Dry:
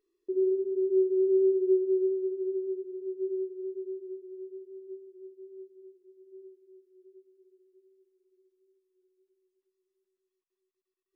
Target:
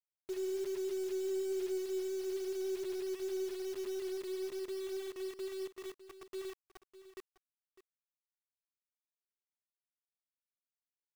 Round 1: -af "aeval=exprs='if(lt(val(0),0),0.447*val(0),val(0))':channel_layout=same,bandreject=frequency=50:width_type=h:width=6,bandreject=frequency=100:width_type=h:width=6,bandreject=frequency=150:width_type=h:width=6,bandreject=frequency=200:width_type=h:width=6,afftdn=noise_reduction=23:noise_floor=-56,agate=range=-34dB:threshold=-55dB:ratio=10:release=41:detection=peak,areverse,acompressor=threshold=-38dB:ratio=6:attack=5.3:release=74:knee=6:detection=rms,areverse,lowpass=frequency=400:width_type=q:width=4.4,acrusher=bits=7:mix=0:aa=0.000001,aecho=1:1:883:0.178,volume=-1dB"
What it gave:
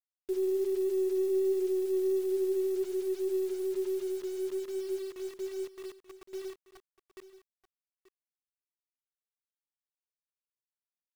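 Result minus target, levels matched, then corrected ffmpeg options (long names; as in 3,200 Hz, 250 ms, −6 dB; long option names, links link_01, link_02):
echo 279 ms late; downward compressor: peak gain reduction −7.5 dB
-af "aeval=exprs='if(lt(val(0),0),0.447*val(0),val(0))':channel_layout=same,bandreject=frequency=50:width_type=h:width=6,bandreject=frequency=100:width_type=h:width=6,bandreject=frequency=150:width_type=h:width=6,bandreject=frequency=200:width_type=h:width=6,afftdn=noise_reduction=23:noise_floor=-56,agate=range=-34dB:threshold=-55dB:ratio=10:release=41:detection=peak,areverse,acompressor=threshold=-47dB:ratio=6:attack=5.3:release=74:knee=6:detection=rms,areverse,lowpass=frequency=400:width_type=q:width=4.4,acrusher=bits=7:mix=0:aa=0.000001,aecho=1:1:604:0.178,volume=-1dB"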